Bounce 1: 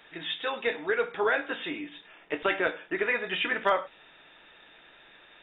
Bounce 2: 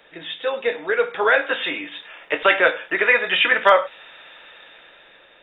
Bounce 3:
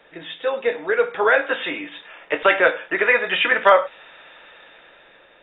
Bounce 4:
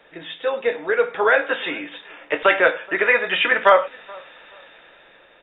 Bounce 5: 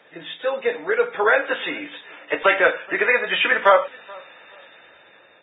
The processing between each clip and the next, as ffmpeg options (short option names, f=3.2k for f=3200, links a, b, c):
-filter_complex "[0:a]equalizer=f=530:t=o:w=0.42:g=10,acrossover=split=320|810[a][b][c];[c]dynaudnorm=f=330:g=7:m=11.5dB[d];[a][b][d]amix=inputs=3:normalize=0,volume=1.5dB"
-af "highshelf=f=3.6k:g=-11,volume=1.5dB"
-filter_complex "[0:a]asplit=2[a][b];[b]adelay=426,lowpass=f=2k:p=1,volume=-24dB,asplit=2[c][d];[d]adelay=426,lowpass=f=2k:p=1,volume=0.29[e];[a][c][e]amix=inputs=3:normalize=0"
-af "volume=-1dB" -ar 16000 -c:a libvorbis -b:a 16k